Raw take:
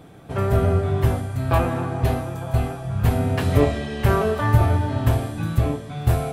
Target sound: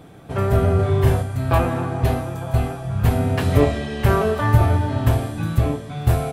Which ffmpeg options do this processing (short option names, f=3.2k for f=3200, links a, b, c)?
-filter_complex "[0:a]asplit=3[a][b][c];[a]afade=t=out:st=0.78:d=0.02[d];[b]asplit=2[e][f];[f]adelay=39,volume=-2dB[g];[e][g]amix=inputs=2:normalize=0,afade=t=in:st=0.78:d=0.02,afade=t=out:st=1.22:d=0.02[h];[c]afade=t=in:st=1.22:d=0.02[i];[d][h][i]amix=inputs=3:normalize=0,volume=1.5dB"